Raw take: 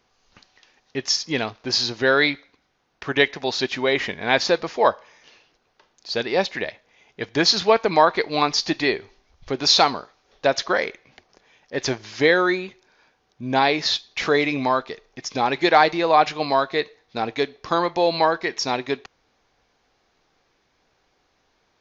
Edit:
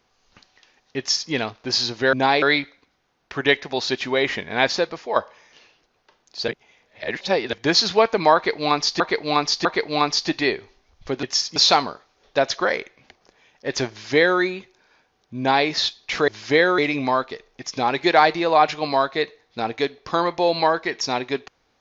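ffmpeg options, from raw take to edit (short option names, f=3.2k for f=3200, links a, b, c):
-filter_complex "[0:a]asplit=12[a][b][c][d][e][f][g][h][i][j][k][l];[a]atrim=end=2.132[m];[b]atrim=start=13.458:end=13.752[n];[c]atrim=start=2.128:end=4.87,asetpts=PTS-STARTPTS,afade=t=out:st=2.192:d=0.55:silence=0.375837[o];[d]atrim=start=4.87:end=6.192,asetpts=PTS-STARTPTS,afade=t=in:d=0.004:c=hsin:silence=0.375837[p];[e]atrim=start=6.188:end=7.242,asetpts=PTS-STARTPTS,areverse[q];[f]atrim=start=7.238:end=8.712[r];[g]atrim=start=8.058:end=8.712[s];[h]atrim=start=8.058:end=9.642[t];[i]atrim=start=0.978:end=1.312[u];[j]atrim=start=9.638:end=14.362[v];[k]atrim=start=11.978:end=12.482[w];[l]atrim=start=14.358[x];[m][n]acrossfade=d=0.004:c1=hsin:c2=hsin[y];[o][p]concat=n=2:v=0:a=1[z];[y][z]acrossfade=d=0.004:c1=hsin:c2=hsin[aa];[aa][q]acrossfade=d=0.004:c1=hsin:c2=hsin[ab];[ab][r]acrossfade=d=0.004:c1=hsin:c2=hsin[ac];[ac][s]acrossfade=d=0.004:c1=hsin:c2=hsin[ad];[ad][t]acrossfade=d=0.004:c1=hsin:c2=hsin[ae];[ae][u]acrossfade=d=0.004:c1=hsin:c2=hsin[af];[af][v]acrossfade=d=0.004:c1=hsin:c2=hsin[ag];[ag][w]acrossfade=d=0.004:c1=hsin:c2=hsin[ah];[ah][x]acrossfade=d=0.004:c1=hsin:c2=hsin"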